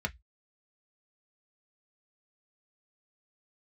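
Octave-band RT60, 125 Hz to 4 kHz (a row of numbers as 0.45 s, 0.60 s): 0.25 s, 0.10 s, 0.10 s, 0.10 s, 0.15 s, 0.15 s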